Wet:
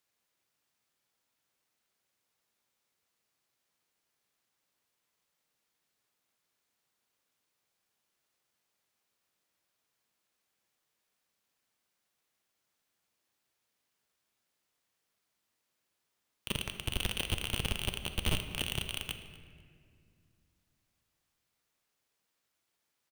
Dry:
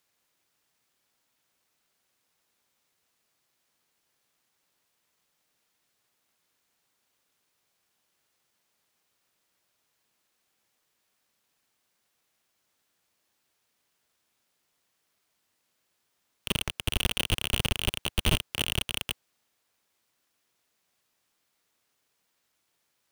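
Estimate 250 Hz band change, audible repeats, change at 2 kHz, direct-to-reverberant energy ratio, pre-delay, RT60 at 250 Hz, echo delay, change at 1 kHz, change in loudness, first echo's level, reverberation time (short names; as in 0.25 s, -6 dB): -5.5 dB, 1, -6.0 dB, 7.5 dB, 9 ms, 3.2 s, 0.247 s, -6.0 dB, -6.0 dB, -20.0 dB, 2.2 s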